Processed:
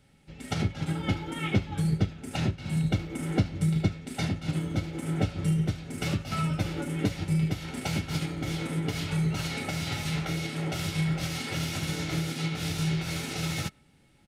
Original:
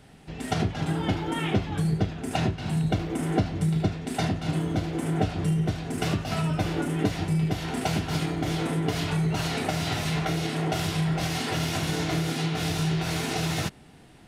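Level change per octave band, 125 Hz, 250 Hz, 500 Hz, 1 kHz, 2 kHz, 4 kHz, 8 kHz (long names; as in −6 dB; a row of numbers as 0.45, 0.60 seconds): −2.0, −3.0, −6.5, −7.0, −2.5, −3.0, −2.5 decibels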